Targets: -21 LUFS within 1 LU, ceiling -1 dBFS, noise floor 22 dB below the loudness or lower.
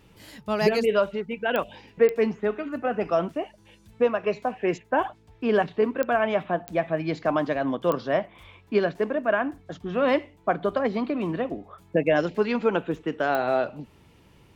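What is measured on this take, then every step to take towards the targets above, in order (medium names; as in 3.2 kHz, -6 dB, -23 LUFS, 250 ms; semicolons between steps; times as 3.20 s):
clicks found 6; loudness -26.0 LUFS; peak level -7.5 dBFS; loudness target -21.0 LUFS
-> de-click; trim +5 dB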